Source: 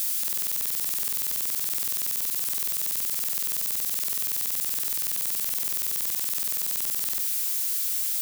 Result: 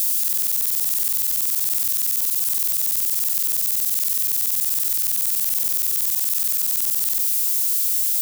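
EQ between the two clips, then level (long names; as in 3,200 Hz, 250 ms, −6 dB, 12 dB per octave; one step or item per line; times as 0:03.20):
low-shelf EQ 270 Hz +6.5 dB
high-shelf EQ 3,500 Hz +10 dB
mains-hum notches 60/120/180/240/300/360/420/480/540/600 Hz
−3.0 dB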